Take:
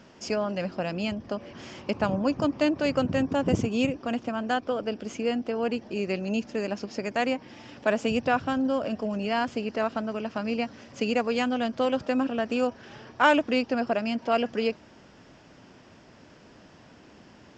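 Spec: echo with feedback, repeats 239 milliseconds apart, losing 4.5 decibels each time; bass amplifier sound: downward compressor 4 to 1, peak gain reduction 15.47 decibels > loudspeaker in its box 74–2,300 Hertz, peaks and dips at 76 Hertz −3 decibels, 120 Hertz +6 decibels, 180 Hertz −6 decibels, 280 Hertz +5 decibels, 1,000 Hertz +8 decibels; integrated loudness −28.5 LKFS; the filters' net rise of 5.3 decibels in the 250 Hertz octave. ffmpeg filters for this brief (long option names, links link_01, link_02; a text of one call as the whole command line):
ffmpeg -i in.wav -af "equalizer=frequency=250:width_type=o:gain=3.5,aecho=1:1:239|478|717|956|1195|1434|1673|1912|2151:0.596|0.357|0.214|0.129|0.0772|0.0463|0.0278|0.0167|0.01,acompressor=threshold=-33dB:ratio=4,highpass=frequency=74:width=0.5412,highpass=frequency=74:width=1.3066,equalizer=frequency=76:width_type=q:width=4:gain=-3,equalizer=frequency=120:width_type=q:width=4:gain=6,equalizer=frequency=180:width_type=q:width=4:gain=-6,equalizer=frequency=280:width_type=q:width=4:gain=5,equalizer=frequency=1000:width_type=q:width=4:gain=8,lowpass=frequency=2300:width=0.5412,lowpass=frequency=2300:width=1.3066,volume=5.5dB" out.wav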